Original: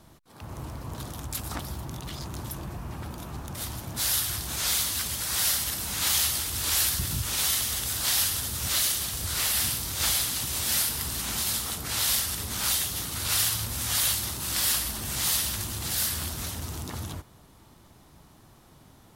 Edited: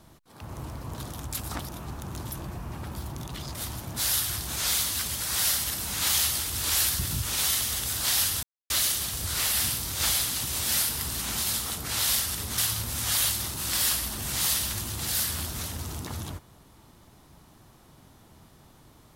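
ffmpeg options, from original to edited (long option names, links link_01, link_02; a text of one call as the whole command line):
ffmpeg -i in.wav -filter_complex "[0:a]asplit=8[link_01][link_02][link_03][link_04][link_05][link_06][link_07][link_08];[link_01]atrim=end=1.692[link_09];[link_02]atrim=start=3.148:end=3.542[link_10];[link_03]atrim=start=2.268:end=3.152[link_11];[link_04]atrim=start=1.688:end=2.272[link_12];[link_05]atrim=start=3.538:end=8.43,asetpts=PTS-STARTPTS,afade=type=out:start_time=4.888:duration=0.004:curve=hsin[link_13];[link_06]atrim=start=8.43:end=8.7,asetpts=PTS-STARTPTS,volume=0[link_14];[link_07]atrim=start=8.7:end=12.582,asetpts=PTS-STARTPTS,afade=type=in:duration=0.004:curve=hsin[link_15];[link_08]atrim=start=13.408[link_16];[link_09][link_10]acrossfade=duration=0.004:curve1=hsin:curve2=hsin[link_17];[link_17][link_11]acrossfade=duration=0.004:curve1=hsin:curve2=hsin[link_18];[link_18][link_12]acrossfade=duration=0.004:curve1=hsin:curve2=hsin[link_19];[link_13][link_14][link_15]concat=n=3:v=0:a=1[link_20];[link_19][link_20]acrossfade=duration=0.004:curve1=hsin:curve2=hsin[link_21];[link_21][link_16]acrossfade=duration=0.004:curve1=hsin:curve2=hsin" out.wav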